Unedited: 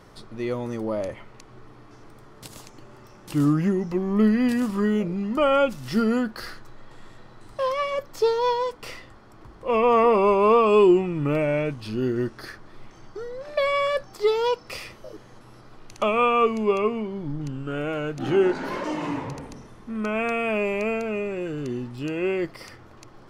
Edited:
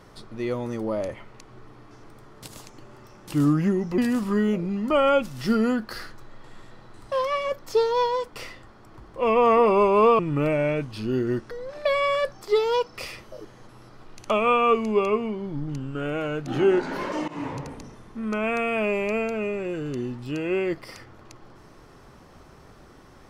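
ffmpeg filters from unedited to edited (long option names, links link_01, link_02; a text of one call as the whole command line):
ffmpeg -i in.wav -filter_complex "[0:a]asplit=5[link_01][link_02][link_03][link_04][link_05];[link_01]atrim=end=3.982[link_06];[link_02]atrim=start=4.448:end=10.662[link_07];[link_03]atrim=start=11.078:end=12.402[link_08];[link_04]atrim=start=13.228:end=19,asetpts=PTS-STARTPTS,afade=type=out:start_time=5.768:duration=0.004:curve=hsin:silence=0.112202[link_09];[link_05]atrim=start=19,asetpts=PTS-STARTPTS,afade=type=in:duration=0.28:curve=qsin:silence=0.112202[link_10];[link_06][link_07]acrossfade=duration=0.004:curve1=hsin:curve2=hsin[link_11];[link_11][link_08]acrossfade=duration=0.004:curve1=hsin:curve2=hsin[link_12];[link_09][link_10]concat=n=2:v=0:a=1[link_13];[link_12][link_13]acrossfade=duration=0.004:curve1=hsin:curve2=hsin" out.wav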